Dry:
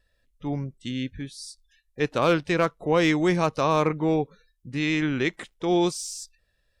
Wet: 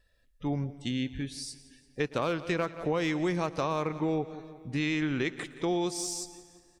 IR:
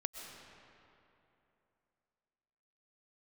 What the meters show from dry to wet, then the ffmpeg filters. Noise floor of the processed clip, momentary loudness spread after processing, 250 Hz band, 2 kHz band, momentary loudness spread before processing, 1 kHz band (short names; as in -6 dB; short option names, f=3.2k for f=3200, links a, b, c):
-66 dBFS, 11 LU, -5.5 dB, -6.5 dB, 15 LU, -7.5 dB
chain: -filter_complex "[0:a]aecho=1:1:174|348|522|696:0.112|0.0527|0.0248|0.0116,acompressor=threshold=-26dB:ratio=6,asplit=2[a][b];[1:a]atrim=start_sample=2205,adelay=113[c];[b][c]afir=irnorm=-1:irlink=0,volume=-19dB[d];[a][d]amix=inputs=2:normalize=0"